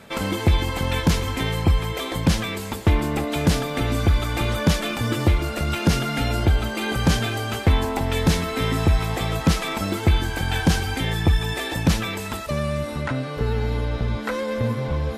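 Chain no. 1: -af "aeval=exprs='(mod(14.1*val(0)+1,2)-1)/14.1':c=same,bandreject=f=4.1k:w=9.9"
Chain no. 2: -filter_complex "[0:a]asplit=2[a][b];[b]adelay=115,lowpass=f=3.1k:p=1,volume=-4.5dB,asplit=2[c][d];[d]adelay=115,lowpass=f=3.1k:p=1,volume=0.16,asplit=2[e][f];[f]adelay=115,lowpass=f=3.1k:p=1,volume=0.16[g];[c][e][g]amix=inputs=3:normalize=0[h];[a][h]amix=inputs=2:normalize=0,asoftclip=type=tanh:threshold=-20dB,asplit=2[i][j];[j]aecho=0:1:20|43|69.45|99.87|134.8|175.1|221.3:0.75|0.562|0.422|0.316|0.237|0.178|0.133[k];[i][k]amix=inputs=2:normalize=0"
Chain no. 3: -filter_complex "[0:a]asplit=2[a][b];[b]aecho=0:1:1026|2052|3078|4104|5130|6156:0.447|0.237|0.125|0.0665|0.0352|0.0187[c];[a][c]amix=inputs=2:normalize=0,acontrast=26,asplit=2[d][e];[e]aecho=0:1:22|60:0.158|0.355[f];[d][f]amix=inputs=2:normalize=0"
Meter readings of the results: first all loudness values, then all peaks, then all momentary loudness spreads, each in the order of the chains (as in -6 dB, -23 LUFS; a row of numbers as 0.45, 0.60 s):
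-26.5, -22.0, -17.0 LUFS; -19.5, -9.5, -1.5 dBFS; 2, 3, 4 LU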